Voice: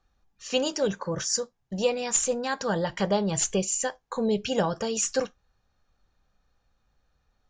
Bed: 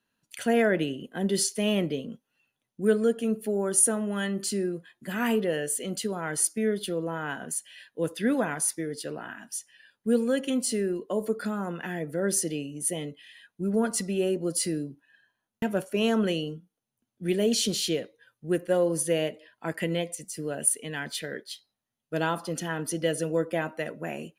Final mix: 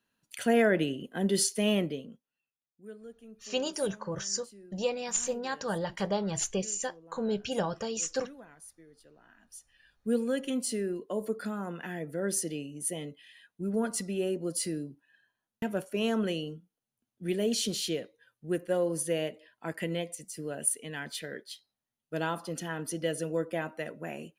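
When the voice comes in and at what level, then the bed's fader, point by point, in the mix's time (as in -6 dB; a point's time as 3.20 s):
3.00 s, -5.5 dB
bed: 1.74 s -1 dB
2.72 s -23.5 dB
9.16 s -23.5 dB
9.94 s -4.5 dB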